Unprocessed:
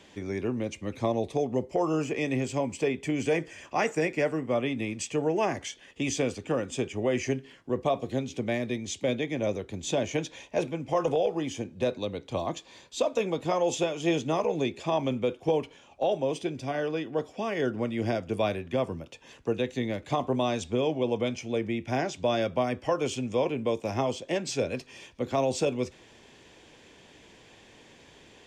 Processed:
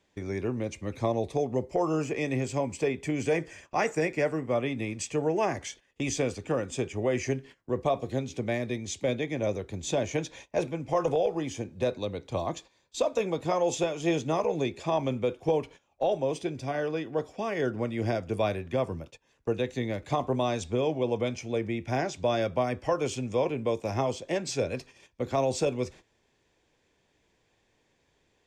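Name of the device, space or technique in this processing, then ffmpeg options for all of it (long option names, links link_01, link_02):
low shelf boost with a cut just above: -af "agate=range=-16dB:threshold=-45dB:ratio=16:detection=peak,lowshelf=frequency=72:gain=7.5,equalizer=frequency=240:width_type=o:width=0.77:gain=-3,equalizer=frequency=3000:width_type=o:width=0.37:gain=-5"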